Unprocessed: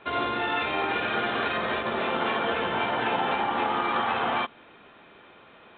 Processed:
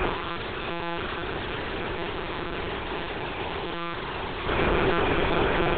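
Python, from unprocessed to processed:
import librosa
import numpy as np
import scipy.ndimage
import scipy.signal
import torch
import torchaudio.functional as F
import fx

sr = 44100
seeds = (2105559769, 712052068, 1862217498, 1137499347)

p1 = fx.fold_sine(x, sr, drive_db=19, ceiling_db=-13.0)
p2 = x + F.gain(torch.from_numpy(p1), -9.5).numpy()
p3 = fx.over_compress(p2, sr, threshold_db=-30.0, ratio=-0.5)
p4 = p3 + 0.62 * np.pad(p3, (int(6.5 * sr / 1000.0), 0))[:len(p3)]
p5 = fx.room_flutter(p4, sr, wall_m=6.7, rt60_s=0.53)
p6 = fx.lpc_monotone(p5, sr, seeds[0], pitch_hz=170.0, order=8)
y = fx.peak_eq(p6, sr, hz=390.0, db=12.5, octaves=0.57)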